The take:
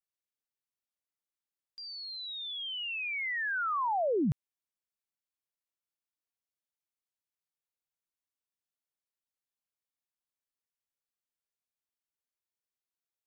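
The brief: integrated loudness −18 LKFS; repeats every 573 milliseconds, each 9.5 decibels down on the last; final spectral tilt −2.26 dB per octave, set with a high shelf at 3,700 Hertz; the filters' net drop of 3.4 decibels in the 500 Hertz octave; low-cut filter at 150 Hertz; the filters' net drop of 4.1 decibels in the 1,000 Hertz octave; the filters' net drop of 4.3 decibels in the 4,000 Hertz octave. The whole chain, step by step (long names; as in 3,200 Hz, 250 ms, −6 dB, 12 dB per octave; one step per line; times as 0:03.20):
high-pass filter 150 Hz
parametric band 500 Hz −3 dB
parametric band 1,000 Hz −4.5 dB
high-shelf EQ 3,700 Hz +6 dB
parametric band 4,000 Hz −9 dB
repeating echo 573 ms, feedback 33%, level −9.5 dB
level +18 dB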